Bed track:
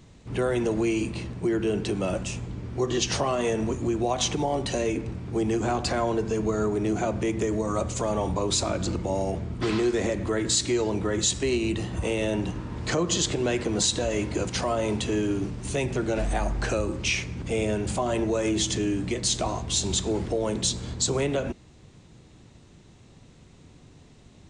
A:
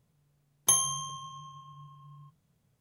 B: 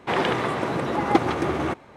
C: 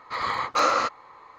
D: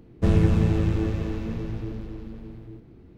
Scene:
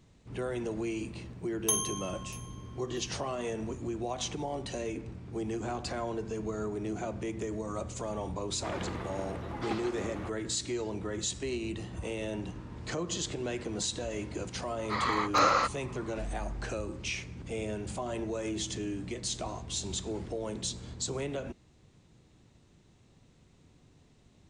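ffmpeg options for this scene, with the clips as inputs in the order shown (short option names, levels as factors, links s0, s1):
-filter_complex "[0:a]volume=0.335[s0];[1:a]aecho=1:1:641|1282:0.0841|0.0143,atrim=end=2.8,asetpts=PTS-STARTPTS,volume=0.562,afade=t=in:d=0.004:c=hsin,afade=t=out:st=2.796:d=0.004:c=hsin,adelay=1000[s1];[2:a]atrim=end=1.96,asetpts=PTS-STARTPTS,volume=0.15,afade=t=in:d=0.004:c=hsin,afade=t=out:st=1.956:d=0.004:c=hsin,adelay=8560[s2];[3:a]atrim=end=1.38,asetpts=PTS-STARTPTS,volume=0.708,afade=t=in:d=0.004:c=hsin,afade=t=out:st=1.376:d=0.004:c=hsin,adelay=14790[s3];[s0][s1][s2][s3]amix=inputs=4:normalize=0"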